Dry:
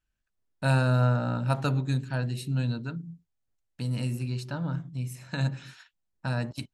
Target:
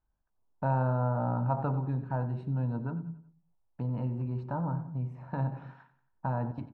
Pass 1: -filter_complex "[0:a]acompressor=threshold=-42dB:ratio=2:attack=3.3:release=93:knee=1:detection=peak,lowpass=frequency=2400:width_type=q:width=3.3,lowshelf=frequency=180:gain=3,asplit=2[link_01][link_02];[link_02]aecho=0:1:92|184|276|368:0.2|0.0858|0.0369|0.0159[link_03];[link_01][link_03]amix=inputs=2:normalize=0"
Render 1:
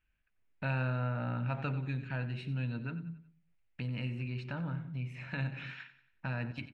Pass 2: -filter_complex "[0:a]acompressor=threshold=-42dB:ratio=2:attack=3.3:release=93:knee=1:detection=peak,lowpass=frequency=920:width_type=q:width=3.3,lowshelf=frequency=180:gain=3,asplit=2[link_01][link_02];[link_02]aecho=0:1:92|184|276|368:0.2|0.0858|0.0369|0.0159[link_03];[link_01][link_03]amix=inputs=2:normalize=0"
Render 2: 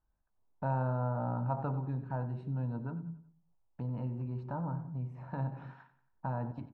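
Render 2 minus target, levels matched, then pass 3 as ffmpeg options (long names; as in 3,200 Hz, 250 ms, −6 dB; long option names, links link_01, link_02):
downward compressor: peak gain reduction +4.5 dB
-filter_complex "[0:a]acompressor=threshold=-33.5dB:ratio=2:attack=3.3:release=93:knee=1:detection=peak,lowpass=frequency=920:width_type=q:width=3.3,lowshelf=frequency=180:gain=3,asplit=2[link_01][link_02];[link_02]aecho=0:1:92|184|276|368:0.2|0.0858|0.0369|0.0159[link_03];[link_01][link_03]amix=inputs=2:normalize=0"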